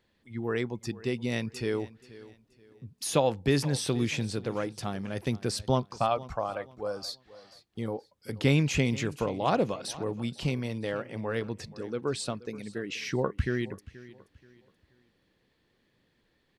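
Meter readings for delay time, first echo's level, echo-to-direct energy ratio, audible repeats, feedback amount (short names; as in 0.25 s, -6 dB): 0.479 s, -18.5 dB, -18.0 dB, 2, 31%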